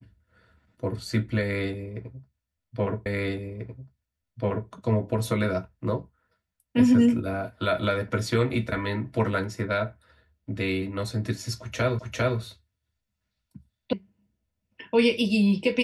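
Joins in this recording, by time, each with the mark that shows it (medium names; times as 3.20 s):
3.06 s: repeat of the last 1.64 s
11.99 s: repeat of the last 0.4 s
13.93 s: sound stops dead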